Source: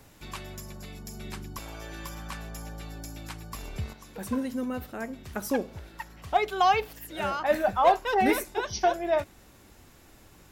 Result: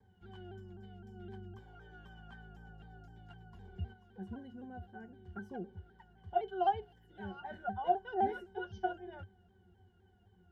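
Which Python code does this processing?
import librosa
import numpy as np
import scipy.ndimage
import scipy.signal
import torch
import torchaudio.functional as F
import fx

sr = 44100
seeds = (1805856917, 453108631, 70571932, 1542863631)

y = fx.octave_resonator(x, sr, note='F#', decay_s=0.11)
y = fx.vibrato_shape(y, sr, shape='saw_down', rate_hz=3.9, depth_cents=100.0)
y = y * 10.0 ** (-2.5 / 20.0)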